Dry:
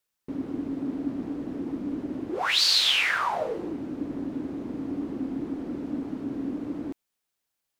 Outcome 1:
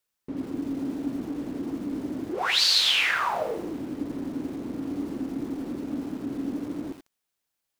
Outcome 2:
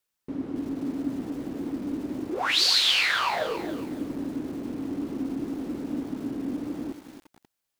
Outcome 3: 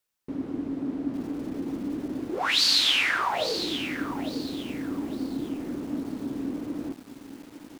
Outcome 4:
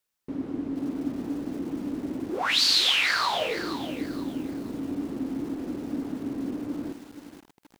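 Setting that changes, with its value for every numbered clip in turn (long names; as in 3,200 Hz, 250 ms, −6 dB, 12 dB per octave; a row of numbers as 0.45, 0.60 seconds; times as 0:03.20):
feedback echo at a low word length, delay time: 84, 276, 855, 474 milliseconds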